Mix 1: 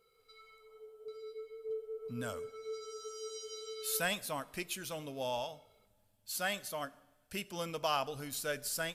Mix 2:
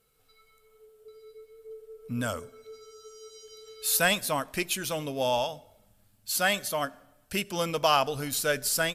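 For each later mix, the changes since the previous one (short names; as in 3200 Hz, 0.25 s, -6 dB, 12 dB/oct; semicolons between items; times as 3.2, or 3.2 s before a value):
speech +11.0 dB; reverb: off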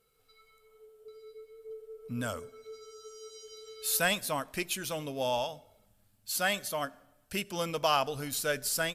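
speech -4.0 dB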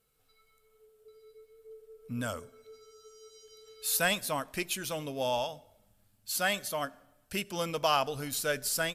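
background -6.0 dB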